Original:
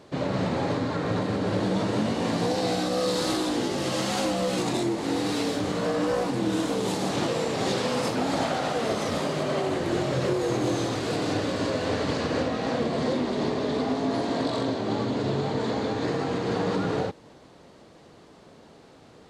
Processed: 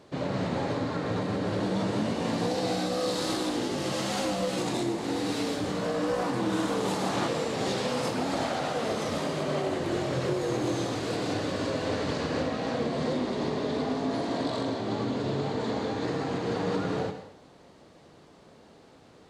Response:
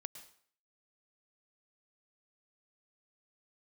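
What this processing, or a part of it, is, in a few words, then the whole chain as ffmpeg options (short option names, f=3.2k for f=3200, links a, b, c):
bathroom: -filter_complex "[0:a]asettb=1/sr,asplit=3[a][b][c];[a]atrim=end=6.194[d];[b]atrim=start=6.19:end=7.28,asetpts=PTS-STARTPTS,afade=t=in:d=0.004:c=qsin,afade=t=out:st=1.086:d=0.004:c=qsin,equalizer=f=1.2k:w=0.97:g=5.5[e];[c]atrim=start=7.276[f];[d][e]acrossfade=d=0.004:c1=hsin:c2=qsin[g];[g][f]acrossfade=d=0.004:c1=qsin:c2=hsin[h];[1:a]atrim=start_sample=2205[i];[h][i]afir=irnorm=-1:irlink=0,volume=1dB"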